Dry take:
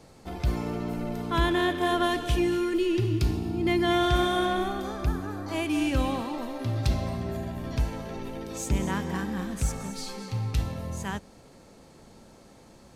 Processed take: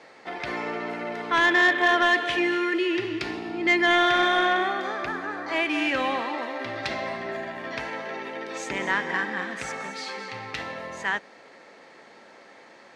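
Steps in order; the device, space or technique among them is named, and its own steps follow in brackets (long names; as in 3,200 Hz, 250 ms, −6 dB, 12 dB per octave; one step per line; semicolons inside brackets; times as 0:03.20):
intercom (band-pass filter 440–4,200 Hz; parametric band 1,900 Hz +11 dB 0.6 octaves; soft clipping −17 dBFS, distortion −19 dB)
level +5.5 dB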